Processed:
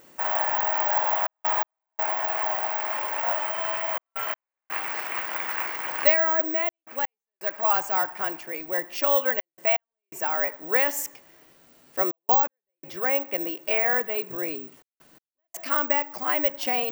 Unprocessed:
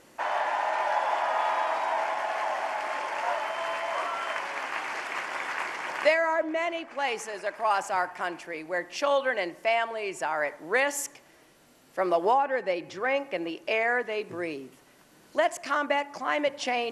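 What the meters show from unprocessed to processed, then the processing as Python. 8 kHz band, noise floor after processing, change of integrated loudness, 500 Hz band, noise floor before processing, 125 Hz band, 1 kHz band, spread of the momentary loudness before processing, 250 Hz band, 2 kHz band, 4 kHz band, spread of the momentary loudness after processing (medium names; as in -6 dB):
-0.5 dB, under -85 dBFS, +4.0 dB, -1.0 dB, -57 dBFS, no reading, -1.0 dB, 7 LU, -1.0 dB, -0.5 dB, -1.0 dB, 10 LU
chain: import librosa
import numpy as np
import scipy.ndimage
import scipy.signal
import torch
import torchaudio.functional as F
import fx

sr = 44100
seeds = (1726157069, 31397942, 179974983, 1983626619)

y = fx.step_gate(x, sr, bpm=83, pattern='xxxxxxx.x..xxxx', floor_db=-60.0, edge_ms=4.5)
y = (np.kron(scipy.signal.resample_poly(y, 1, 2), np.eye(2)[0]) * 2)[:len(y)]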